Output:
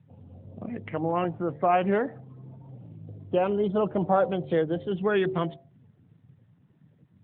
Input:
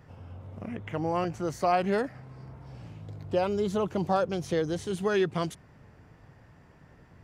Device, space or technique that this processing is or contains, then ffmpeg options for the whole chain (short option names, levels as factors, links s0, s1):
mobile call with aggressive noise cancelling: -filter_complex "[0:a]bandreject=f=75.36:t=h:w=4,bandreject=f=150.72:t=h:w=4,bandreject=f=226.08:t=h:w=4,bandreject=f=301.44:t=h:w=4,bandreject=f=376.8:t=h:w=4,bandreject=f=452.16:t=h:w=4,bandreject=f=527.52:t=h:w=4,bandreject=f=602.88:t=h:w=4,bandreject=f=678.24:t=h:w=4,bandreject=f=753.6:t=h:w=4,bandreject=f=828.96:t=h:w=4,bandreject=f=904.32:t=h:w=4,bandreject=f=979.68:t=h:w=4,asplit=3[s0][s1][s2];[s0]afade=t=out:st=3.59:d=0.02[s3];[s1]adynamicequalizer=threshold=0.00794:dfrequency=630:dqfactor=2.7:tfrequency=630:tqfactor=2.7:attack=5:release=100:ratio=0.375:range=1.5:mode=boostabove:tftype=bell,afade=t=in:st=3.59:d=0.02,afade=t=out:st=4.97:d=0.02[s4];[s2]afade=t=in:st=4.97:d=0.02[s5];[s3][s4][s5]amix=inputs=3:normalize=0,highpass=100,afftdn=nr=17:nf=-47,volume=1.41" -ar 8000 -c:a libopencore_amrnb -b:a 12200